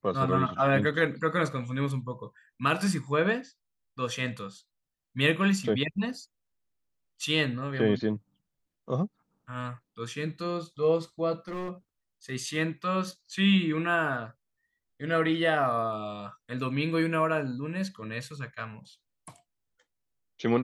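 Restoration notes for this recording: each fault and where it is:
11.48–11.71 s: clipped -31.5 dBFS

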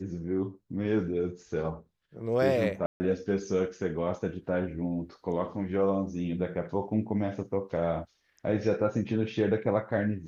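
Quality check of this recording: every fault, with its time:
2.86–3.00 s: dropout 140 ms

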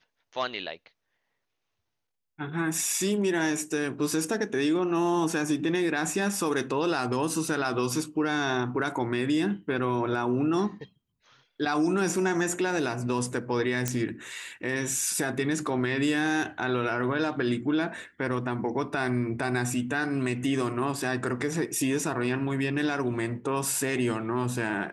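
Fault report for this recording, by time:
13.88 s: pop -11 dBFS

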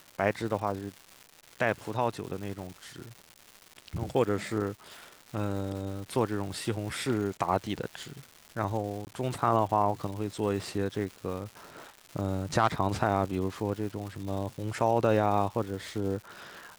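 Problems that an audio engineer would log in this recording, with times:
crackle 370 per s -38 dBFS
9.05–9.07 s: dropout 19 ms

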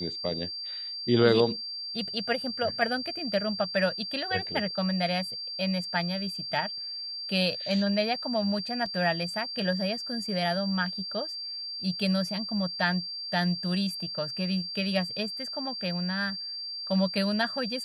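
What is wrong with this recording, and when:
whine 4.7 kHz -34 dBFS
8.86 s: dropout 2.6 ms

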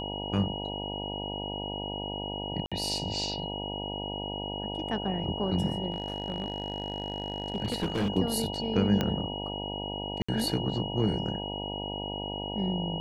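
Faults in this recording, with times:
buzz 50 Hz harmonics 19 -37 dBFS
whine 2.9 kHz -37 dBFS
2.66–2.72 s: dropout 56 ms
5.92–8.10 s: clipped -24.5 dBFS
9.01 s: pop -13 dBFS
10.22–10.29 s: dropout 65 ms

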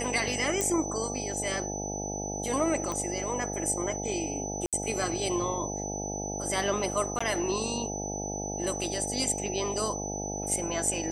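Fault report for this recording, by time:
buzz 50 Hz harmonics 17 -36 dBFS
whine 6 kHz -36 dBFS
0.61 s: pop -13 dBFS
2.92 s: pop -20 dBFS
4.66–4.73 s: dropout 67 ms
7.19–7.21 s: dropout 15 ms

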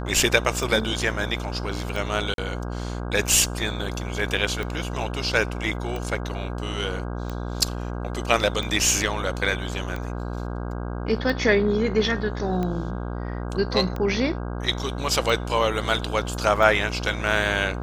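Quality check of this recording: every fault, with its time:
buzz 60 Hz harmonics 27 -30 dBFS
tick 45 rpm
2.34–2.38 s: dropout 42 ms

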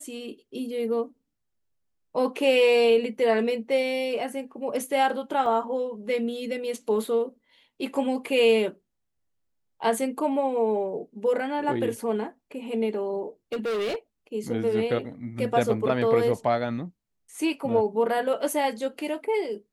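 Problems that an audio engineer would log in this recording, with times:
5.46 s: dropout 2.5 ms
13.52–13.96 s: clipped -25 dBFS

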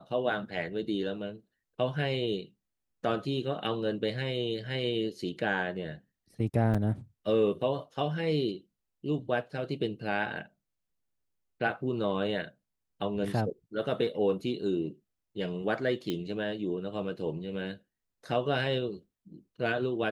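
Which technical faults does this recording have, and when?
6.74–6.75 s: dropout 6.2 ms
16.10 s: pop -19 dBFS

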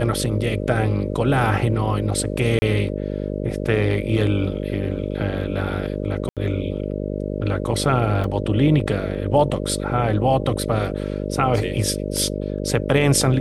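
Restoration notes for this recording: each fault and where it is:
buzz 50 Hz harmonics 12 -26 dBFS
2.59–2.62 s: dropout 30 ms
6.29–6.37 s: dropout 77 ms
8.24 s: dropout 2.7 ms

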